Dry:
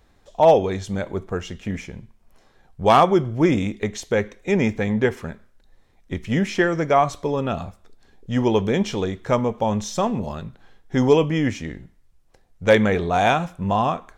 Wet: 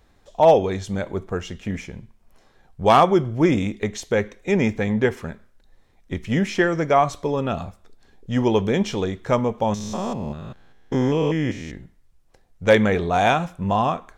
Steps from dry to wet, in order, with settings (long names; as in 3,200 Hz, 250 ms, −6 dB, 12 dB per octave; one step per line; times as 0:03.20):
0:09.74–0:11.74: spectrum averaged block by block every 200 ms